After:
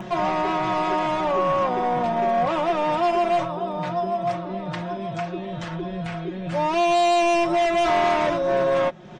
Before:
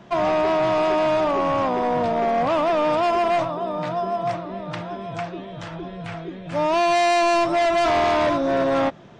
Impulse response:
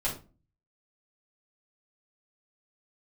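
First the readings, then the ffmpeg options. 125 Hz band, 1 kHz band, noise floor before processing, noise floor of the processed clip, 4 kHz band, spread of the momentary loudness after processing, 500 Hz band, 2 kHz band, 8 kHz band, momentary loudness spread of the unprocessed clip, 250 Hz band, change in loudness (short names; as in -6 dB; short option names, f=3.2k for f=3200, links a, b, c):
+1.0 dB, -0.5 dB, -37 dBFS, -33 dBFS, -1.5 dB, 11 LU, -1.5 dB, -1.5 dB, -1.0 dB, 14 LU, -1.5 dB, -1.5 dB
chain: -af "acompressor=mode=upward:threshold=-24dB:ratio=2.5,aecho=1:1:5.5:0.74,adynamicequalizer=threshold=0.00282:dfrequency=4600:dqfactor=4.7:tfrequency=4600:tqfactor=4.7:attack=5:release=100:ratio=0.375:range=2:mode=cutabove:tftype=bell,volume=-3dB"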